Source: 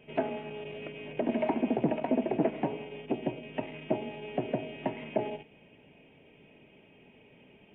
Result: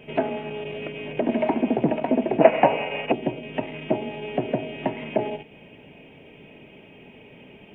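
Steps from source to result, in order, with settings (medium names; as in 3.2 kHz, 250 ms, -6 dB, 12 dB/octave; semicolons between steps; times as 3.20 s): time-frequency box 2.41–3.12 s, 460–3000 Hz +12 dB; in parallel at -2.5 dB: compression, threshold -44 dBFS, peak gain reduction 27 dB; on the sum: trim +5.5 dB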